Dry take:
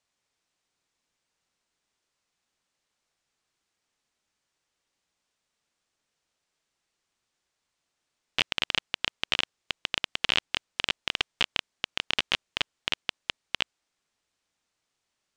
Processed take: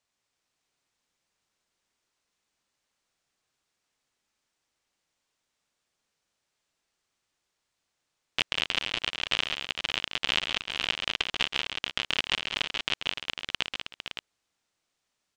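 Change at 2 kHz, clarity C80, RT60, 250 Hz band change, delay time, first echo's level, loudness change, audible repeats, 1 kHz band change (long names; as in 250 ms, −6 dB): +0.5 dB, no reverb audible, no reverb audible, +0.5 dB, 135 ms, −9.0 dB, 0.0 dB, 5, +0.5 dB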